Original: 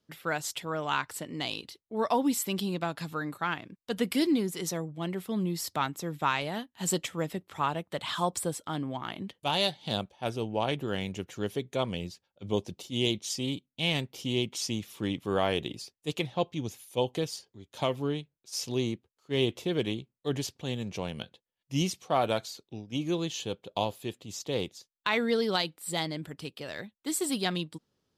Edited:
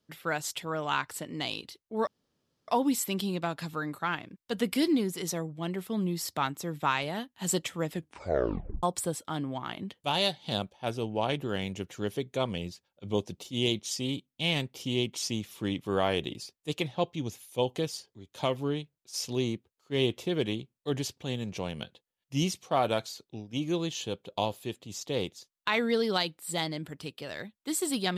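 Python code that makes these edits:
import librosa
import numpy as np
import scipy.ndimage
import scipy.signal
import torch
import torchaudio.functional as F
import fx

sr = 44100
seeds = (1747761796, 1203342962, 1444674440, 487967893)

y = fx.edit(x, sr, fx.insert_room_tone(at_s=2.07, length_s=0.61),
    fx.tape_stop(start_s=7.3, length_s=0.92), tone=tone)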